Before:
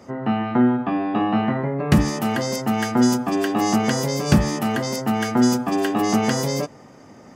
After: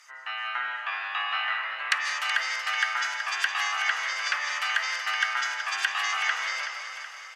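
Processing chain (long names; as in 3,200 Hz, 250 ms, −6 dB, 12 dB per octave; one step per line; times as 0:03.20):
high-pass filter 1,500 Hz 24 dB per octave
notch filter 5,000 Hz, Q 22
treble cut that deepens with the level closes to 1,900 Hz, closed at −27 dBFS
automatic gain control gain up to 4 dB
repeating echo 375 ms, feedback 54%, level −9.5 dB
comb and all-pass reverb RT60 0.69 s, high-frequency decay 0.6×, pre-delay 115 ms, DRR 7 dB
level +3 dB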